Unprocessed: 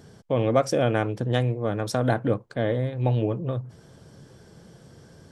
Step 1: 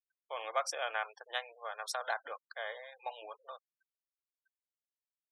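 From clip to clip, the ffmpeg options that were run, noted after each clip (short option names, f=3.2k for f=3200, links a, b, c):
-af "highpass=f=820:w=0.5412,highpass=f=820:w=1.3066,afftfilt=real='re*gte(hypot(re,im),0.00794)':imag='im*gte(hypot(re,im),0.00794)':win_size=1024:overlap=0.75,volume=-4.5dB"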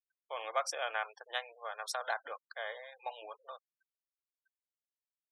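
-af anull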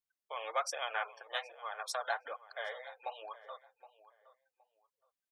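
-filter_complex "[0:a]flanger=delay=0.9:depth=6.4:regen=25:speed=1.2:shape=sinusoidal,asplit=2[a][b];[b]adelay=768,lowpass=f=2k:p=1,volume=-16dB,asplit=2[c][d];[d]adelay=768,lowpass=f=2k:p=1,volume=0.24[e];[a][c][e]amix=inputs=3:normalize=0,volume=3.5dB"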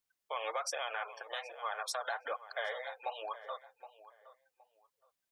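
-af "alimiter=level_in=8dB:limit=-24dB:level=0:latency=1:release=111,volume=-8dB,volume=5.5dB"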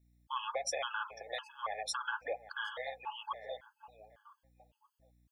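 -af "aeval=exprs='val(0)+0.000316*(sin(2*PI*60*n/s)+sin(2*PI*2*60*n/s)/2+sin(2*PI*3*60*n/s)/3+sin(2*PI*4*60*n/s)/4+sin(2*PI*5*60*n/s)/5)':c=same,afftfilt=real='re*gt(sin(2*PI*1.8*pts/sr)*(1-2*mod(floor(b*sr/1024/860),2)),0)':imag='im*gt(sin(2*PI*1.8*pts/sr)*(1-2*mod(floor(b*sr/1024/860),2)),0)':win_size=1024:overlap=0.75,volume=3dB"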